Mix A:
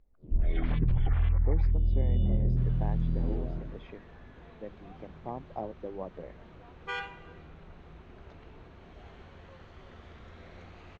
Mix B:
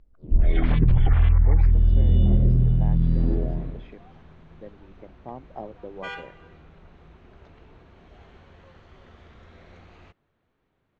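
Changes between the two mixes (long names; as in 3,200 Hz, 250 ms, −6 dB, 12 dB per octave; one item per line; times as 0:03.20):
first sound +8.5 dB
second sound: entry −0.85 s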